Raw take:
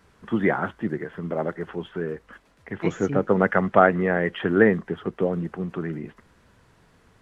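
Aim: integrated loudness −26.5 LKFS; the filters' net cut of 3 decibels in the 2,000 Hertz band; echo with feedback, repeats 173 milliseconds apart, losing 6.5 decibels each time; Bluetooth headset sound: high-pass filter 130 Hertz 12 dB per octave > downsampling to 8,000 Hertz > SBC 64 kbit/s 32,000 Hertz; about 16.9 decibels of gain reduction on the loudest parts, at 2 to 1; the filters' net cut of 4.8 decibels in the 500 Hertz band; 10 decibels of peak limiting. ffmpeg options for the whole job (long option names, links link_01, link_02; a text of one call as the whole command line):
ffmpeg -i in.wav -af "equalizer=frequency=500:width_type=o:gain=-6,equalizer=frequency=2000:width_type=o:gain=-3.5,acompressor=threshold=-46dB:ratio=2,alimiter=level_in=6dB:limit=-24dB:level=0:latency=1,volume=-6dB,highpass=130,aecho=1:1:173|346|519|692|865|1038:0.473|0.222|0.105|0.0491|0.0231|0.0109,aresample=8000,aresample=44100,volume=16dB" -ar 32000 -c:a sbc -b:a 64k out.sbc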